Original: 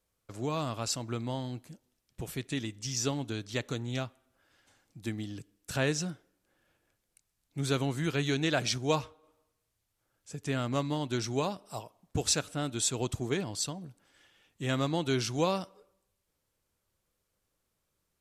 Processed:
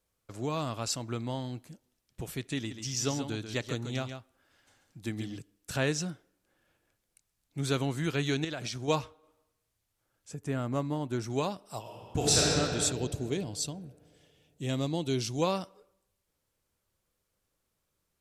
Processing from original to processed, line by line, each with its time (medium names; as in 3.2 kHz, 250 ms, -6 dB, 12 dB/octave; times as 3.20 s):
2.57–5.37 s: delay 138 ms -8 dB
8.44–8.88 s: compression 10:1, threshold -32 dBFS
10.34–11.30 s: peaking EQ 3.9 kHz -11 dB 1.9 oct
11.80–12.42 s: reverb throw, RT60 2.9 s, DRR -6.5 dB
12.92–15.42 s: peaking EQ 1.4 kHz -11.5 dB 1.3 oct